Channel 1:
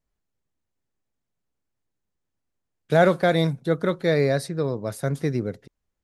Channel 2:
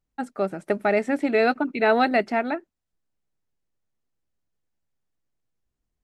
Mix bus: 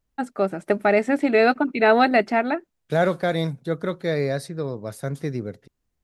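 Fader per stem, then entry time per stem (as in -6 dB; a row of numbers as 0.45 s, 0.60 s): -3.0 dB, +3.0 dB; 0.00 s, 0.00 s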